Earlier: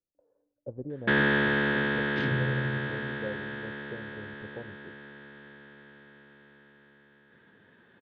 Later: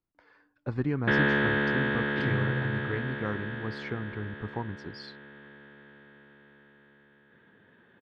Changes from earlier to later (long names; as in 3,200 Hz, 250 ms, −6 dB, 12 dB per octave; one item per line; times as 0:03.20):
speech: remove transistor ladder low-pass 590 Hz, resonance 75%
master: add high-frequency loss of the air 100 metres